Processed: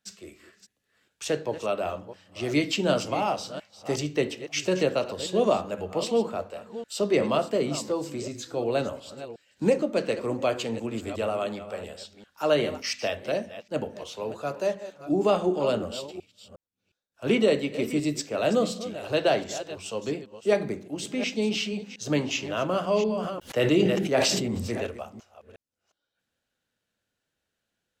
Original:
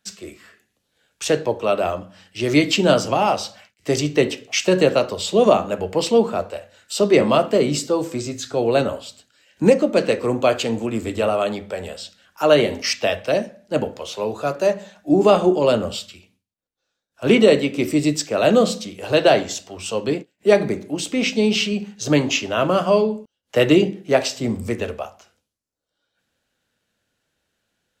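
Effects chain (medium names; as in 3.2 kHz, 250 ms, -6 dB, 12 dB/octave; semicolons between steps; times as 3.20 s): chunks repeated in reverse 360 ms, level -13 dB; 22.82–24.87 s: decay stretcher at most 30 dB/s; trim -8.5 dB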